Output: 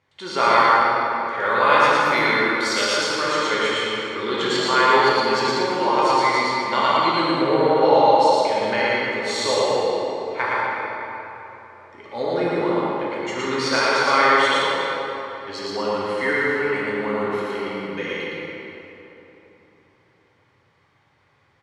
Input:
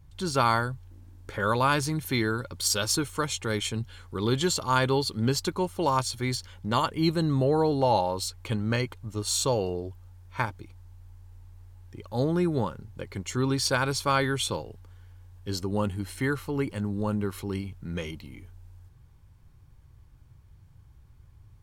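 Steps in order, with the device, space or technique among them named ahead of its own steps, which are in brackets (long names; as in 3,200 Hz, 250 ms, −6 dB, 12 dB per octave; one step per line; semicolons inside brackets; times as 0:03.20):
station announcement (band-pass filter 420–4,300 Hz; parametric band 2,000 Hz +10 dB 0.25 octaves; loudspeakers that aren't time-aligned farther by 39 metres −1 dB, 58 metres −10 dB; convolution reverb RT60 3.5 s, pre-delay 5 ms, DRR −5.5 dB)
level +1.5 dB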